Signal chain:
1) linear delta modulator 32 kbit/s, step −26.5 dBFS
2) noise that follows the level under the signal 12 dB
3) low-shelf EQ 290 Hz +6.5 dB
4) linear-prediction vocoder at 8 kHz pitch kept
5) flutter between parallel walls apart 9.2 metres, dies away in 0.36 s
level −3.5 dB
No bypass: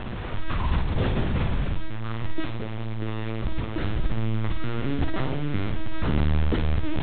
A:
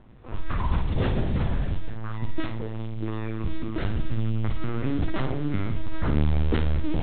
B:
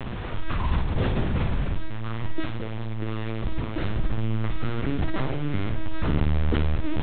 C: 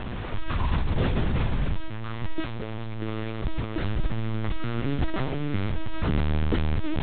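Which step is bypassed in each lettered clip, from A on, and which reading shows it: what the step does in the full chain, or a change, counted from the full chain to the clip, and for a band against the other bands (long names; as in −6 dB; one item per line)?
1, 4 kHz band −3.5 dB
2, change in crest factor +1.5 dB
5, echo-to-direct ratio −8.5 dB to none audible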